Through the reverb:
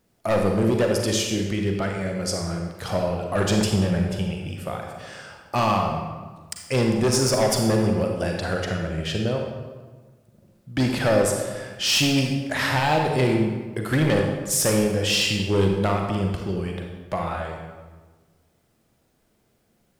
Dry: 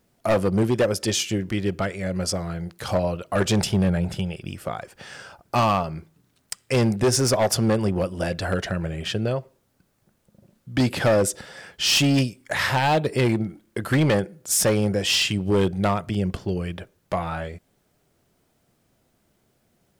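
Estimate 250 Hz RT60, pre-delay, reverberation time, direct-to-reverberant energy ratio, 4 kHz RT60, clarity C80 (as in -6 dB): 1.6 s, 36 ms, 1.3 s, 1.5 dB, 0.95 s, 5.0 dB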